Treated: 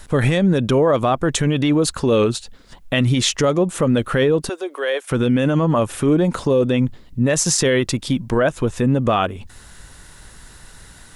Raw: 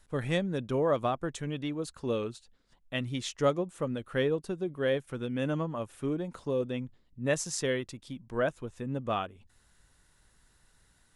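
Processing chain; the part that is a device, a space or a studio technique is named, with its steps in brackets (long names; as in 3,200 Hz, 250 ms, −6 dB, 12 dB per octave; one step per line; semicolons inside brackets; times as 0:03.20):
loud club master (downward compressor 2.5 to 1, threshold −31 dBFS, peak gain reduction 7.5 dB; hard clipping −22 dBFS, distortion −47 dB; boost into a limiter +30 dB)
0:04.49–0:05.11: Bessel high-pass filter 630 Hz, order 8
level −7.5 dB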